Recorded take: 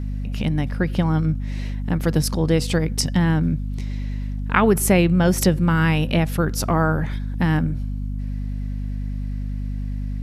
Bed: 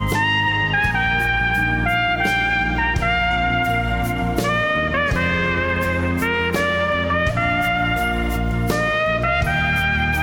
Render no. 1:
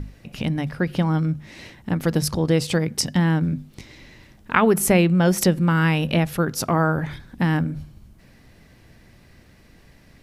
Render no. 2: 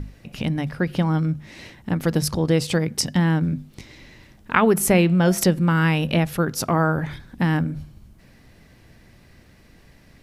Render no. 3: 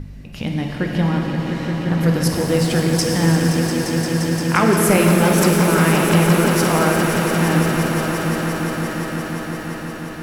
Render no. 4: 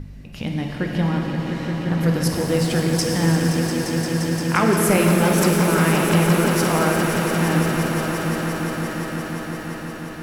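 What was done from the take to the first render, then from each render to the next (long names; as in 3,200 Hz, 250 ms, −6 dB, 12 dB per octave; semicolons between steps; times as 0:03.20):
mains-hum notches 50/100/150/200/250 Hz
0:04.86–0:05.51: hum removal 227.2 Hz, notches 23
echo that builds up and dies away 174 ms, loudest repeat 5, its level −10.5 dB; reverb with rising layers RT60 3.7 s, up +7 semitones, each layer −8 dB, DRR 0.5 dB
level −2.5 dB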